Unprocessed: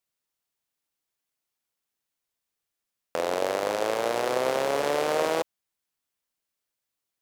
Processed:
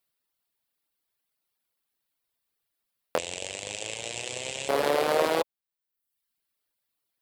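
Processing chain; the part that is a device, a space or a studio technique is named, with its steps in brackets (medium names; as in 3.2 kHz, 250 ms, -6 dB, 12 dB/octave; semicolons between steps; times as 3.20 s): reverb removal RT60 0.8 s; exciter from parts (in parallel at -5.5 dB: high-pass 4.7 kHz 24 dB/octave + saturation -32 dBFS, distortion -11 dB + high-pass 2.6 kHz 24 dB/octave); 3.18–4.69 s: on the sum: FFT filter 110 Hz 0 dB, 240 Hz -14 dB, 910 Hz -17 dB, 1.3 kHz -25 dB, 2.7 kHz +4 dB, 4.5 kHz -5 dB, 7.7 kHz +12 dB, 13 kHz -29 dB; trim +3.5 dB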